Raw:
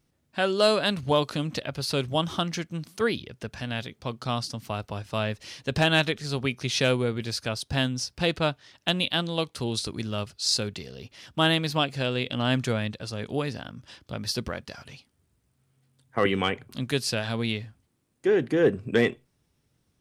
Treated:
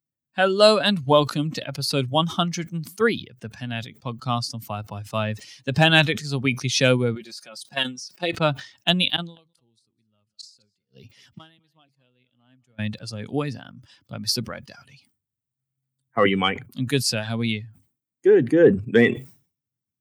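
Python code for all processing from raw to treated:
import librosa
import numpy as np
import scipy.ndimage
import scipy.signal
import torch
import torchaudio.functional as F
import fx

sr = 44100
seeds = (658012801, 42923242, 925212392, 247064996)

y = fx.chain(x, sr, fx.highpass(hz=260.0, slope=12),
    fx.comb(ms=5.5, depth=0.6),
    fx.level_steps(step_db=13), at=(7.15, 8.34))
y = fx.chain(y, sr, fx.gate_flip(shuts_db=-28.0, range_db=-27),
    fx.echo_single(ms=208, db=-16.0), at=(9.16, 12.79))
y = fx.bin_expand(y, sr, power=1.5)
y = scipy.signal.sosfilt(scipy.signal.butter(4, 110.0, 'highpass', fs=sr, output='sos'), y)
y = fx.sustainer(y, sr, db_per_s=140.0)
y = y * librosa.db_to_amplitude(8.0)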